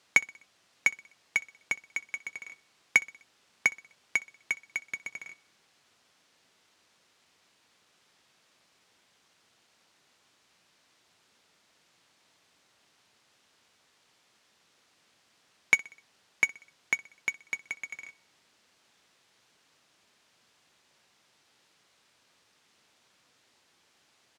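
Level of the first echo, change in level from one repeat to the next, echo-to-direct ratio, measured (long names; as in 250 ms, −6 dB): −22.0 dB, −6.0 dB, −20.5 dB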